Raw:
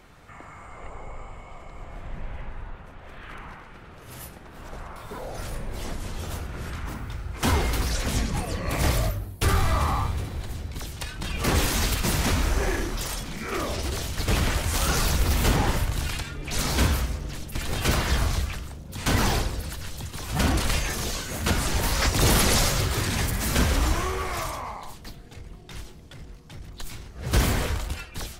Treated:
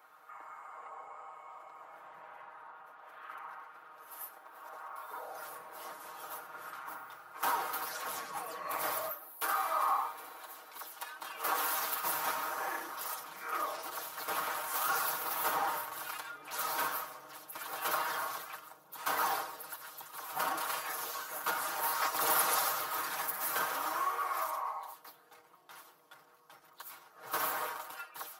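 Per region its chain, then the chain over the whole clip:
4.07–5.16 s: high-pass 200 Hz + companded quantiser 8-bit
9.11–11.79 s: high-pass 250 Hz + tape noise reduction on one side only encoder only
whole clip: Chebyshev high-pass 1.2 kHz, order 2; high-order bell 4 kHz -14.5 dB 2.7 oct; comb 6.4 ms, depth 77%

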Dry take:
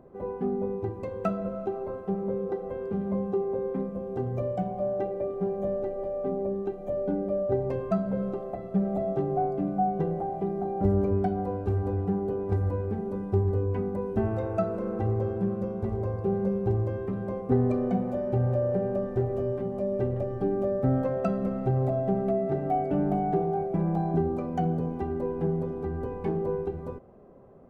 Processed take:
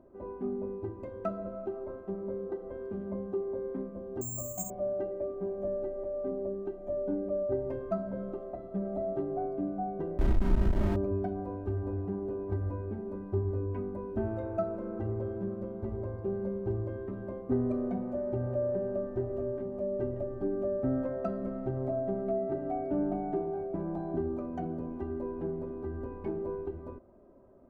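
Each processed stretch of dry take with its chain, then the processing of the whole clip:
4.21–4.70 s: static phaser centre 1.7 kHz, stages 6 + careless resampling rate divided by 6×, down filtered, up zero stuff
10.18–10.96 s: Schmitt trigger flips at -27 dBFS + tilt EQ -2 dB/octave + doubling 35 ms -3.5 dB
whole clip: treble shelf 2.5 kHz -10.5 dB; comb 3.2 ms, depth 59%; trim -6 dB

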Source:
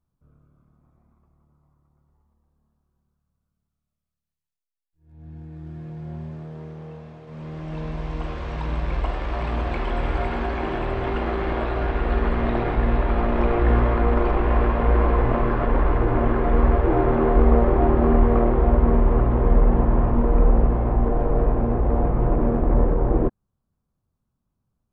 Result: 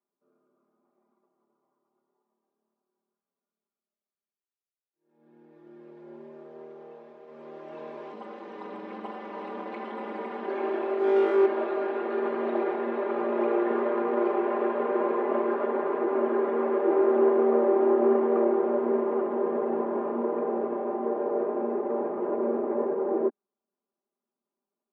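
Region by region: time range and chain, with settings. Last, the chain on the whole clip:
8.12–10.48 s: comb 4 ms, depth 53% + AM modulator 260 Hz, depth 90%
10.98–11.46 s: peaking EQ 290 Hz +4.5 dB 0.45 oct + overload inside the chain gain 22.5 dB + flutter echo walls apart 3.5 m, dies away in 0.63 s
whole clip: steep high-pass 300 Hz 36 dB/octave; tilt EQ -3.5 dB/octave; comb 5 ms, depth 95%; trim -7.5 dB

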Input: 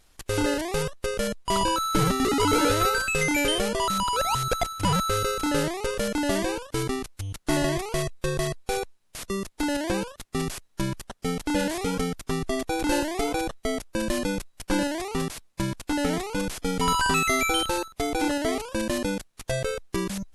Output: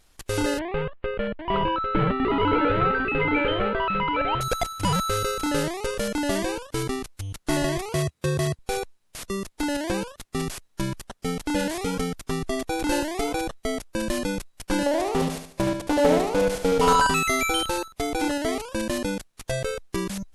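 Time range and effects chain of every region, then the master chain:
0.59–4.41 s: inverse Chebyshev low-pass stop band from 5.5 kHz + delay 800 ms -6 dB
7.88–8.59 s: high-pass 81 Hz 24 dB/octave + bass shelf 150 Hz +11.5 dB
14.86–17.07 s: peaking EQ 570 Hz +11.5 dB 1.1 oct + feedback delay 73 ms, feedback 38%, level -7 dB + loudspeaker Doppler distortion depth 0.18 ms
whole clip: none

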